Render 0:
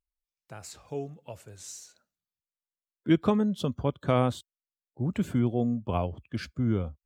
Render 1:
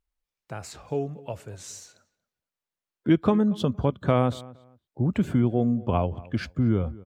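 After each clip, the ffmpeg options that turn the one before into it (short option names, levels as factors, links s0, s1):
-filter_complex "[0:a]highshelf=f=3900:g=-8.5,acompressor=threshold=0.0224:ratio=1.5,asplit=2[s0][s1];[s1]adelay=232,lowpass=f=2300:p=1,volume=0.0944,asplit=2[s2][s3];[s3]adelay=232,lowpass=f=2300:p=1,volume=0.23[s4];[s0][s2][s4]amix=inputs=3:normalize=0,volume=2.51"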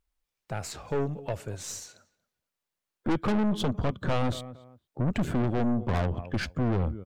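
-af "aeval=exprs='(tanh(28.2*val(0)+0.55)-tanh(0.55))/28.2':c=same,volume=1.88"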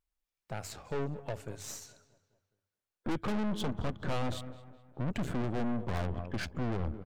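-filter_complex "[0:a]bandreject=f=50:t=h:w=6,bandreject=f=100:t=h:w=6,asplit=2[s0][s1];[s1]adelay=209,lowpass=f=3400:p=1,volume=0.141,asplit=2[s2][s3];[s3]adelay=209,lowpass=f=3400:p=1,volume=0.54,asplit=2[s4][s5];[s5]adelay=209,lowpass=f=3400:p=1,volume=0.54,asplit=2[s6][s7];[s7]adelay=209,lowpass=f=3400:p=1,volume=0.54,asplit=2[s8][s9];[s9]adelay=209,lowpass=f=3400:p=1,volume=0.54[s10];[s0][s2][s4][s6][s8][s10]amix=inputs=6:normalize=0,aeval=exprs='(tanh(25.1*val(0)+0.75)-tanh(0.75))/25.1':c=same,volume=0.75"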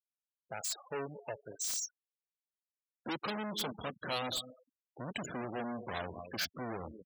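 -filter_complex "[0:a]highpass=f=580:p=1,afftfilt=real='re*gte(hypot(re,im),0.00794)':imag='im*gte(hypot(re,im),0.00794)':win_size=1024:overlap=0.75,acrossover=split=4500[s0][s1];[s1]aeval=exprs='0.02*sin(PI/2*6.31*val(0)/0.02)':c=same[s2];[s0][s2]amix=inputs=2:normalize=0,volume=1.12"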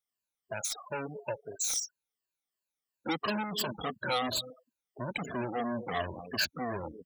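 -af "afftfilt=real='re*pow(10,16/40*sin(2*PI*(1.4*log(max(b,1)*sr/1024/100)/log(2)-(-2.9)*(pts-256)/sr)))':imag='im*pow(10,16/40*sin(2*PI*(1.4*log(max(b,1)*sr/1024/100)/log(2)-(-2.9)*(pts-256)/sr)))':win_size=1024:overlap=0.75,volume=1.26"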